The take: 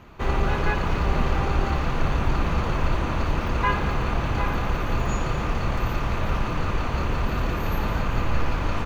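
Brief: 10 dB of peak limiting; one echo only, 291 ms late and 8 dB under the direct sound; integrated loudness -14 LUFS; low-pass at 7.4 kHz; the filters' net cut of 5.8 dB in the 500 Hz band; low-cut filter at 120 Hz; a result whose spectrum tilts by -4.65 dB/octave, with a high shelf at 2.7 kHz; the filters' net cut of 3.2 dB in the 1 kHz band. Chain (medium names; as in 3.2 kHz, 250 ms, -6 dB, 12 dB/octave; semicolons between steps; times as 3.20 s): high-pass 120 Hz; low-pass 7.4 kHz; peaking EQ 500 Hz -7 dB; peaking EQ 1 kHz -3.5 dB; treble shelf 2.7 kHz +8 dB; peak limiter -22 dBFS; delay 291 ms -8 dB; trim +16.5 dB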